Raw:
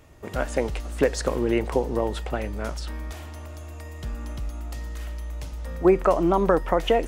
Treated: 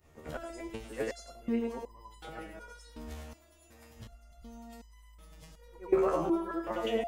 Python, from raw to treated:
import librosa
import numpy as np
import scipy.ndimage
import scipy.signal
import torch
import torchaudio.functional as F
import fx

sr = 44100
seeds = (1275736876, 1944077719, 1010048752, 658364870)

y = fx.frame_reverse(x, sr, frame_ms=215.0)
y = fx.resonator_held(y, sr, hz=2.7, low_hz=77.0, high_hz=1000.0)
y = y * 10.0 ** (3.5 / 20.0)